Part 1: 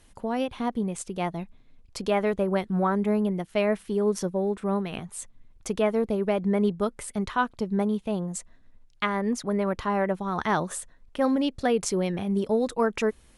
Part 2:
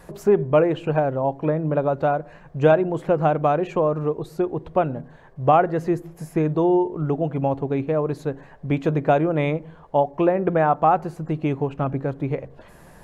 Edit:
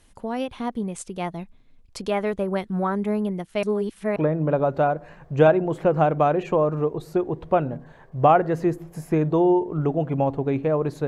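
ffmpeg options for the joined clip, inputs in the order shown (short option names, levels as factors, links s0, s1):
-filter_complex "[0:a]apad=whole_dur=11.07,atrim=end=11.07,asplit=2[s0][s1];[s0]atrim=end=3.632[s2];[s1]atrim=start=3.628:end=4.162,asetpts=PTS-STARTPTS,areverse[s3];[1:a]atrim=start=1.398:end=8.31[s4];[s2][s3]acrossfade=d=0.004:c1=hsin:c2=hsin[s5];[s5][s4]acrossfade=d=0.004:c1=hsin:c2=hsin"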